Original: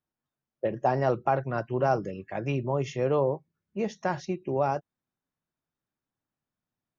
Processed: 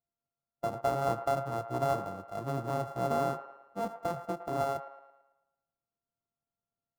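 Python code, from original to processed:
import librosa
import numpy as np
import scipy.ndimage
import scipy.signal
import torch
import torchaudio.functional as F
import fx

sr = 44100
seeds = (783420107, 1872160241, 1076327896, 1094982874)

y = np.r_[np.sort(x[:len(x) // 64 * 64].reshape(-1, 64), axis=1).ravel(), x[len(x) // 64 * 64:]]
y = fx.high_shelf_res(y, sr, hz=1500.0, db=-11.0, q=1.5)
y = fx.echo_wet_bandpass(y, sr, ms=111, feedback_pct=47, hz=1100.0, wet_db=-10.0)
y = y * librosa.db_to_amplitude(-5.5)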